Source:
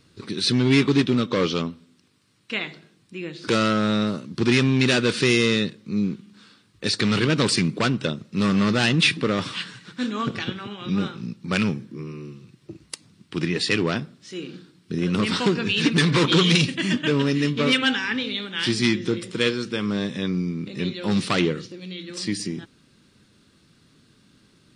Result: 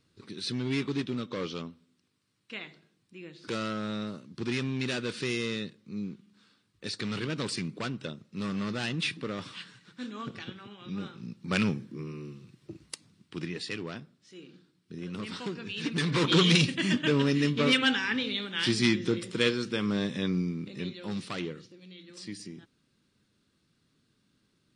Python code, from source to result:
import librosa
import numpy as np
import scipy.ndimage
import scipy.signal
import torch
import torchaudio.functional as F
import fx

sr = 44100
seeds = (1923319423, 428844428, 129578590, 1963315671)

y = fx.gain(x, sr, db=fx.line((11.02, -12.5), (11.57, -4.5), (12.84, -4.5), (13.79, -15.0), (15.7, -15.0), (16.4, -4.0), (20.4, -4.0), (21.25, -14.0)))